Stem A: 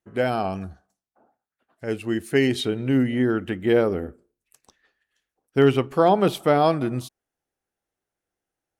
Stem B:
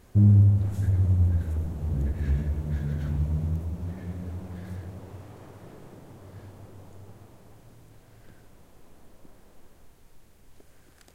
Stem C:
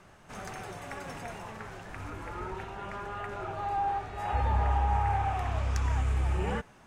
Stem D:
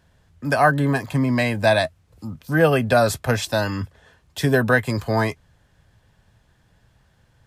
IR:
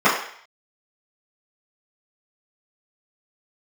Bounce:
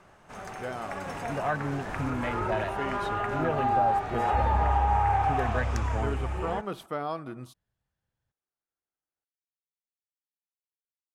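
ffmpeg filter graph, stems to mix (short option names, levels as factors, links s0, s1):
-filter_complex "[0:a]equalizer=f=1200:t=o:w=0.77:g=8,adelay=450,volume=0.188[s0];[2:a]dynaudnorm=f=120:g=21:m=3.16,equalizer=f=770:t=o:w=2.7:g=5,volume=0.668[s1];[3:a]afwtdn=0.0794,adelay=850,volume=0.335[s2];[s0][s1][s2]amix=inputs=3:normalize=0,acompressor=threshold=0.0282:ratio=1.5"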